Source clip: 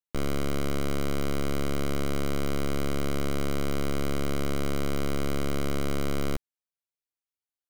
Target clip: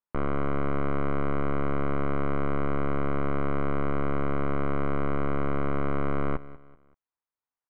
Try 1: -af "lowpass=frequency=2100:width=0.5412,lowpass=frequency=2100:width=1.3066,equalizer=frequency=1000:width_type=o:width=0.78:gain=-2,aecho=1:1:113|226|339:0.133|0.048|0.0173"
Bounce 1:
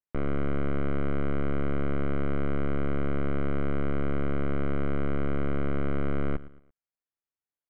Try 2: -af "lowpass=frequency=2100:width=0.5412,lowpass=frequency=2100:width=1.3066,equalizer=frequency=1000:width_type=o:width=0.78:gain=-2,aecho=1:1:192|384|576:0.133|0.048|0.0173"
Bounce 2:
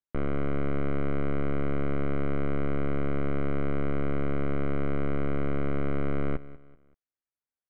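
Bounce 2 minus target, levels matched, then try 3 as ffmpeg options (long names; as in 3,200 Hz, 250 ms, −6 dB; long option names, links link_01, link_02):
1,000 Hz band −6.0 dB
-af "lowpass=frequency=2100:width=0.5412,lowpass=frequency=2100:width=1.3066,equalizer=frequency=1000:width_type=o:width=0.78:gain=9,aecho=1:1:192|384|576:0.133|0.048|0.0173"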